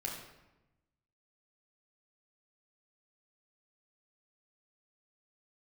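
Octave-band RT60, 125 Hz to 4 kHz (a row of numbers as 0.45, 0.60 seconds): 1.5, 1.3, 1.0, 0.95, 0.90, 0.70 seconds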